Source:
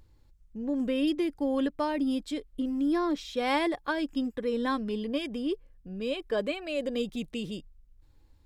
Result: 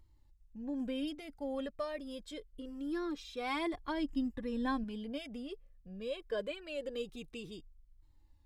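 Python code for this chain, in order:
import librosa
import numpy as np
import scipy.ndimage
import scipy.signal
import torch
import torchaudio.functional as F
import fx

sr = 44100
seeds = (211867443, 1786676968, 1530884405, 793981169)

y = fx.low_shelf(x, sr, hz=210.0, db=10.0, at=(3.73, 4.84))
y = fx.comb_cascade(y, sr, direction='falling', hz=0.25)
y = y * librosa.db_to_amplitude(-4.0)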